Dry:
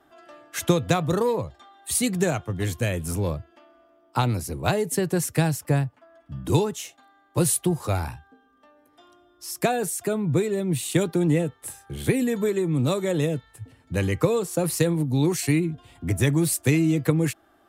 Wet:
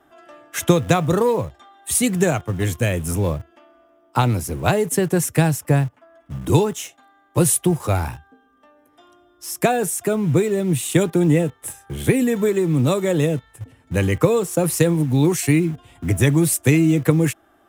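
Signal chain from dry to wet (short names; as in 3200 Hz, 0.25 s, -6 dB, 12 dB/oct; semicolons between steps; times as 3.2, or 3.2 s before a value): in parallel at -11.5 dB: bit-crush 6-bit; on the sum: bell 4400 Hz -7 dB 0.37 oct; gain +3 dB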